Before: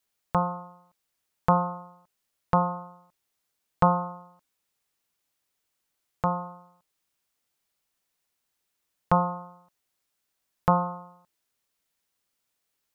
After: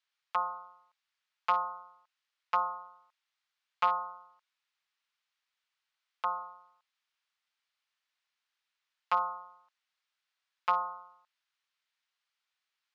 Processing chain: one-sided clip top -16.5 dBFS; Butterworth band-pass 2200 Hz, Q 0.64

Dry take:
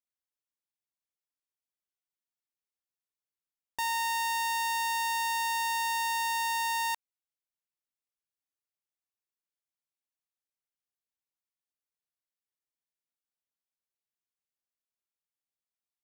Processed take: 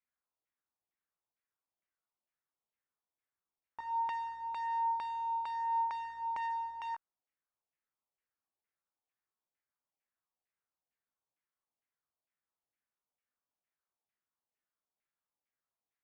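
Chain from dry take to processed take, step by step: added harmonics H 5 -6 dB, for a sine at -25.5 dBFS; chorus 0.19 Hz, delay 16 ms, depth 3.3 ms; LFO low-pass saw down 2.2 Hz 710–2300 Hz; gain -7.5 dB

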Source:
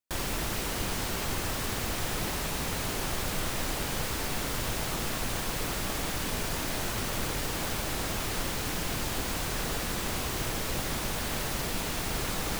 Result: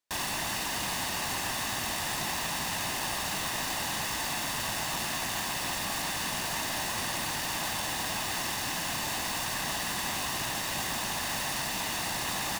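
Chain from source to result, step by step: HPF 400 Hz 6 dB/oct; comb 1.1 ms, depth 77%; sample-rate reducer 19000 Hz

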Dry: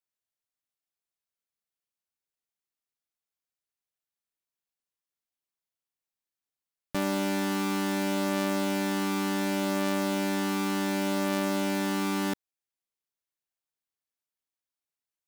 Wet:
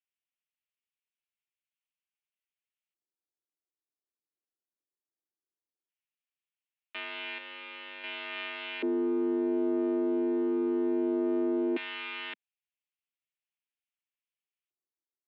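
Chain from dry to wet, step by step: 7.38–8.04 hard clip -31.5 dBFS, distortion -15 dB; LFO band-pass square 0.17 Hz 290–2600 Hz; mistuned SSB +53 Hz 150–3500 Hz; gain +4 dB

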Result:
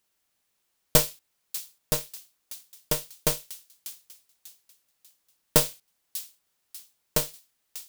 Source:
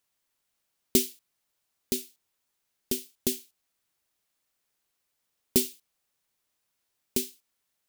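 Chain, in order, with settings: thin delay 0.593 s, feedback 37%, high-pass 3000 Hz, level -12.5 dB; polarity switched at an audio rate 230 Hz; gain +3.5 dB

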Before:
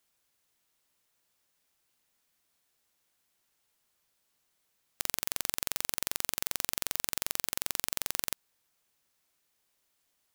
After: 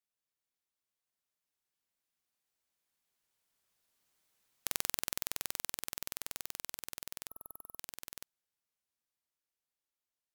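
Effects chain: Doppler pass-by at 4.43, 29 m/s, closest 22 m; spectral delete 7.28–7.78, 1300–11000 Hz; gain -1 dB

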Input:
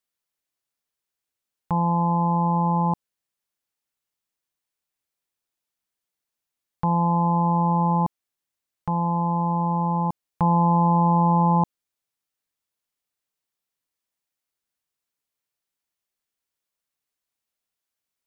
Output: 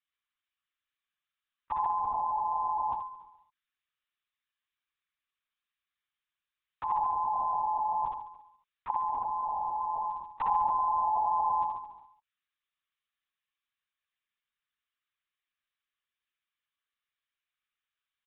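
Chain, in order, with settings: HPF 1100 Hz 24 dB/oct; on a send: feedback echo 70 ms, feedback 57%, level -3.5 dB; on the sum: LPC vocoder at 8 kHz whisper

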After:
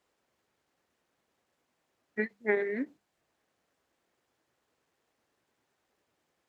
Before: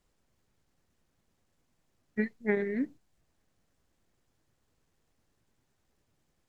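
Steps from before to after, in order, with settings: HPF 62 Hz; tone controls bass -14 dB, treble -6 dB; notches 50/100/150/200 Hz; ending taper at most 540 dB/s; gain +3.5 dB

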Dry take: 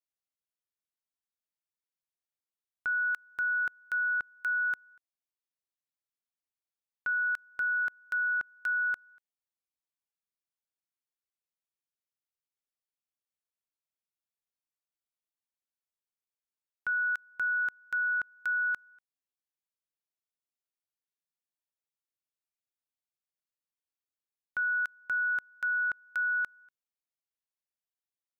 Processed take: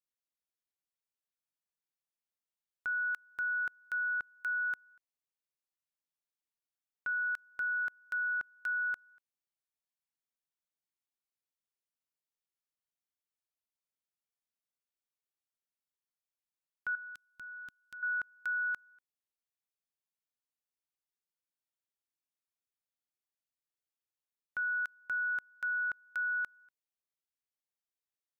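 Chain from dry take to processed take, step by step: 16.95–18.03 band shelf 920 Hz -13 dB 2.8 oct; gain -4 dB

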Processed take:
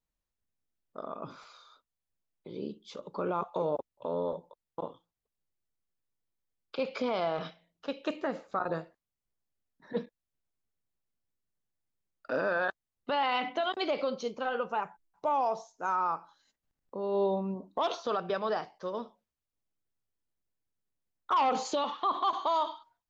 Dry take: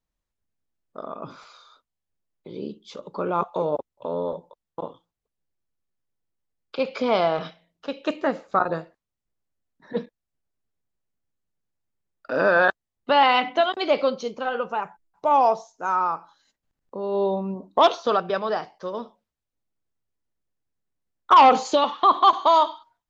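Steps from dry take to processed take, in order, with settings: limiter -16 dBFS, peak gain reduction 10 dB; gain -5 dB

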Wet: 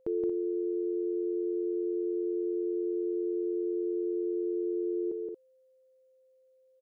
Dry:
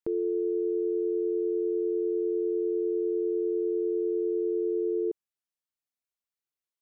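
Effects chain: loudspeakers at several distances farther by 59 m -3 dB, 79 m -9 dB; whine 520 Hz -60 dBFS; gain -2 dB

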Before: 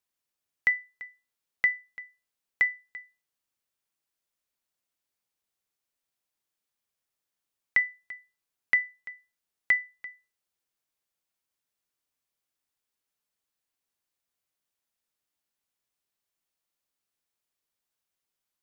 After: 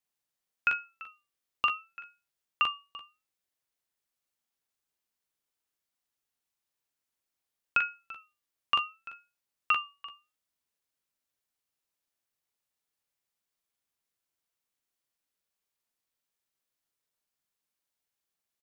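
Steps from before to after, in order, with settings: early reflections 43 ms -3.5 dB, 57 ms -13 dB; ring modulator with a swept carrier 710 Hz, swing 20%, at 0.7 Hz

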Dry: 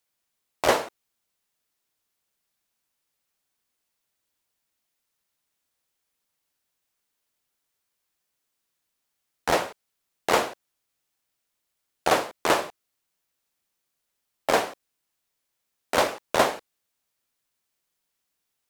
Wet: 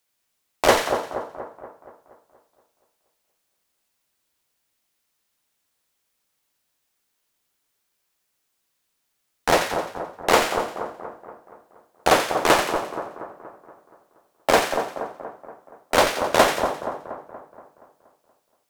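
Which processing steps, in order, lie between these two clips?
notches 50/100/150 Hz; split-band echo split 1400 Hz, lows 0.237 s, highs 87 ms, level -6.5 dB; in parallel at -9.5 dB: Schmitt trigger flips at -16 dBFS; on the sum: gain +4 dB

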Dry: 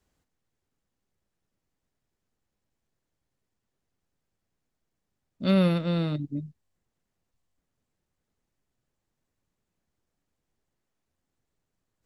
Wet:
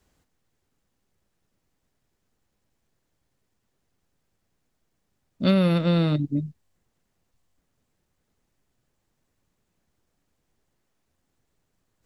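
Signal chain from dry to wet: compressor, threshold -23 dBFS, peak gain reduction 6.5 dB; gain +7 dB

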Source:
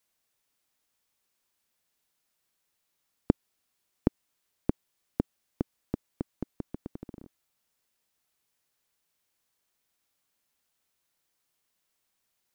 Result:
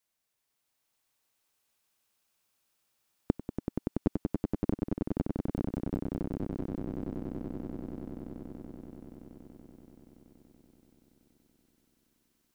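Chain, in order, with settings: swelling echo 95 ms, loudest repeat 8, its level -6 dB; gain -4.5 dB

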